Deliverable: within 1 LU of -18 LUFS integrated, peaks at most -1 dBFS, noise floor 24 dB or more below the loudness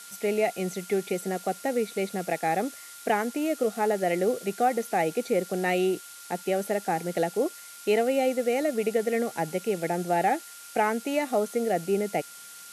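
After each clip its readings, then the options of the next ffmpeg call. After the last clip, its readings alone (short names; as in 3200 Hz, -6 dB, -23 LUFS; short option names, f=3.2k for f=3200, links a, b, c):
steady tone 1400 Hz; tone level -50 dBFS; noise floor -45 dBFS; noise floor target -52 dBFS; loudness -27.5 LUFS; peak -11.5 dBFS; loudness target -18.0 LUFS
-> -af "bandreject=f=1.4k:w=30"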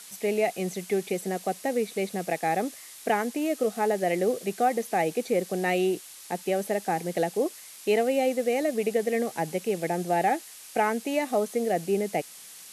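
steady tone none; noise floor -46 dBFS; noise floor target -52 dBFS
-> -af "afftdn=nr=6:nf=-46"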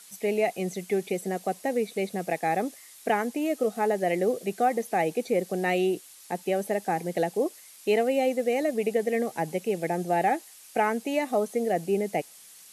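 noise floor -50 dBFS; noise floor target -52 dBFS
-> -af "afftdn=nr=6:nf=-50"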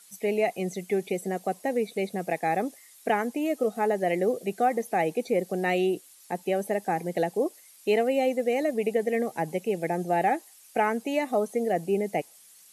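noise floor -54 dBFS; loudness -28.0 LUFS; peak -12.0 dBFS; loudness target -18.0 LUFS
-> -af "volume=10dB"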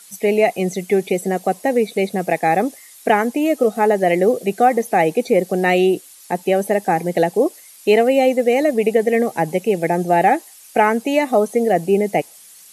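loudness -18.0 LUFS; peak -2.0 dBFS; noise floor -44 dBFS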